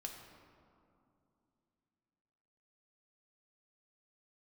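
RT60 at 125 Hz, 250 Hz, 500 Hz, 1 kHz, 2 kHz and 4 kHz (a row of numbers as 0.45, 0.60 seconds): 3.4, 3.5, 2.8, 2.6, 1.7, 1.2 seconds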